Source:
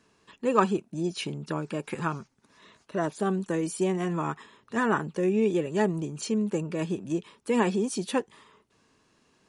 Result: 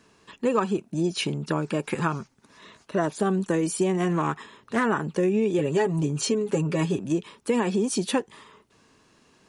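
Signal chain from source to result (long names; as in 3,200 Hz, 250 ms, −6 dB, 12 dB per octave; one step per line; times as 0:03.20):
0:05.58–0:06.99: comb filter 7.3 ms, depth 74%
downward compressor 10 to 1, threshold −25 dBFS, peak gain reduction 10.5 dB
0:04.12–0:04.84: highs frequency-modulated by the lows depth 0.17 ms
level +6 dB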